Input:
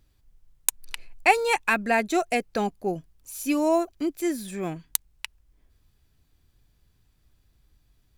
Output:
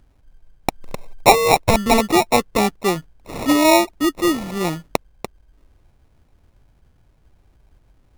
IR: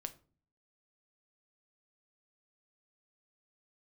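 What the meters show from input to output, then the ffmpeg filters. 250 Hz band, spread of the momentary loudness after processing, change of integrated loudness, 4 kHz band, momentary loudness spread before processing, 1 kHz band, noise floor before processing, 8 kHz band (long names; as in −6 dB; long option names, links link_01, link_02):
+8.5 dB, 22 LU, +8.0 dB, +12.5 dB, 18 LU, +8.5 dB, −66 dBFS, +5.5 dB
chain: -af "apsyclip=10dB,acrusher=samples=28:mix=1:aa=0.000001,volume=-1.5dB"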